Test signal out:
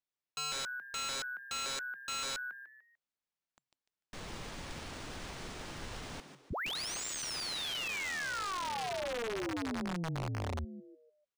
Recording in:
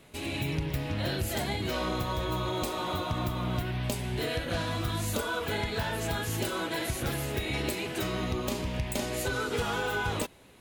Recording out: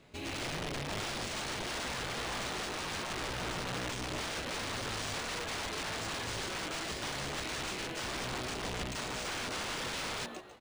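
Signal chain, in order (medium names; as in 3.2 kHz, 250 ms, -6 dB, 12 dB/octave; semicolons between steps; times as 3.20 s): frequency-shifting echo 148 ms, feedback 35%, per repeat +130 Hz, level -10 dB; integer overflow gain 27.5 dB; decimation joined by straight lines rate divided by 3×; trim -4 dB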